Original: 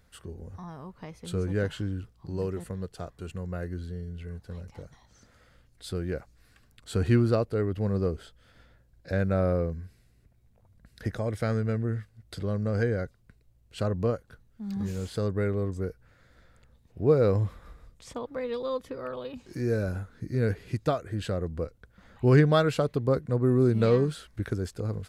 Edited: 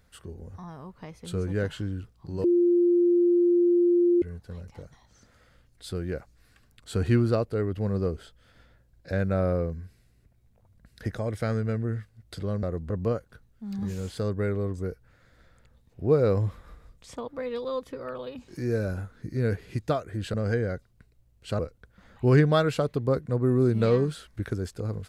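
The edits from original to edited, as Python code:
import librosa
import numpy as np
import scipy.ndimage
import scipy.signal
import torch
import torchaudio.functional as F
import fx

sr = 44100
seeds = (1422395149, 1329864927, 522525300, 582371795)

y = fx.edit(x, sr, fx.bleep(start_s=2.44, length_s=1.78, hz=349.0, db=-17.5),
    fx.swap(start_s=12.63, length_s=1.25, other_s=21.32, other_length_s=0.27), tone=tone)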